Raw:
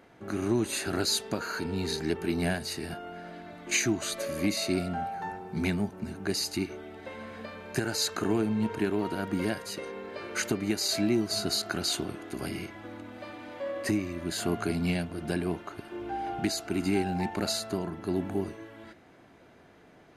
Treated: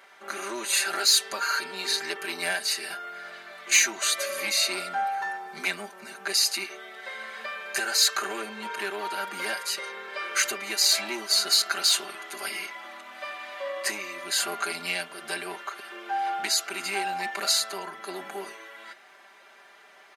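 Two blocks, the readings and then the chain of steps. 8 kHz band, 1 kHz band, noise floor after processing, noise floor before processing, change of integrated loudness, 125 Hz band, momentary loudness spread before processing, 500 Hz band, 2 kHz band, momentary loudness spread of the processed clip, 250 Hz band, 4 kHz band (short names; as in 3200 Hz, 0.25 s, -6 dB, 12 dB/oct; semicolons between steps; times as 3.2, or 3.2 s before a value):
+9.0 dB, +6.0 dB, -53 dBFS, -56 dBFS, +5.0 dB, under -20 dB, 14 LU, -4.0 dB, +8.0 dB, 17 LU, -14.5 dB, +9.0 dB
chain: soft clip -20.5 dBFS, distortion -18 dB; HPF 1000 Hz 12 dB/oct; comb 5.1 ms, depth 94%; gain +7 dB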